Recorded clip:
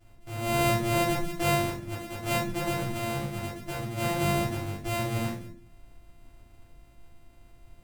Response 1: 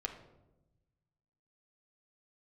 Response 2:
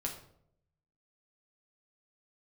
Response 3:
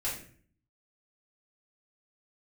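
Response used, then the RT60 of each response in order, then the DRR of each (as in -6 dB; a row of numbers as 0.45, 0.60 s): 3; 1.0, 0.70, 0.50 s; 2.5, -0.5, -8.0 dB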